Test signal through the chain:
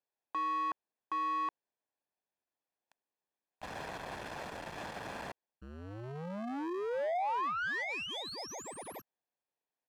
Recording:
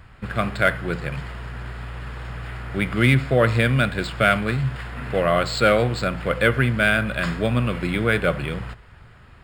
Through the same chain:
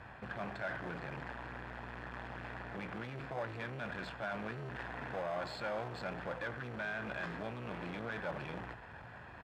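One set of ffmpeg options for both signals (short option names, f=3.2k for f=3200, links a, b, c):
-filter_complex "[0:a]aecho=1:1:1.2:0.54,areverse,acompressor=threshold=-26dB:ratio=6,areverse,alimiter=level_in=2dB:limit=-24dB:level=0:latency=1:release=23,volume=-2dB,asplit=2[a][b];[b]acrusher=samples=31:mix=1:aa=0.000001,volume=-6.5dB[c];[a][c]amix=inputs=2:normalize=0,asoftclip=type=tanh:threshold=-33dB,bandpass=f=890:t=q:w=0.68:csg=0,volume=2.5dB"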